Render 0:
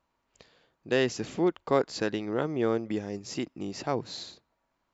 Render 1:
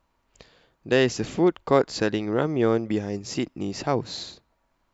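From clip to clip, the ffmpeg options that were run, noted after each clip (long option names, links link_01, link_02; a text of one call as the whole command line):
ffmpeg -i in.wav -af "lowshelf=frequency=67:gain=11.5,volume=5dB" out.wav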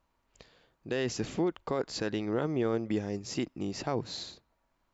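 ffmpeg -i in.wav -af "alimiter=limit=-15.5dB:level=0:latency=1:release=43,volume=-5dB" out.wav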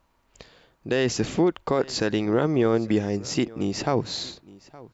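ffmpeg -i in.wav -af "aecho=1:1:866:0.0841,volume=8.5dB" out.wav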